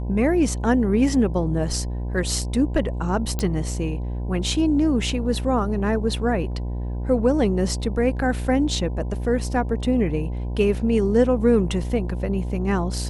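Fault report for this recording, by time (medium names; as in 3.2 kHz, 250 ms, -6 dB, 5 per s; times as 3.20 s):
buzz 60 Hz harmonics 17 -27 dBFS
3.39 s: pop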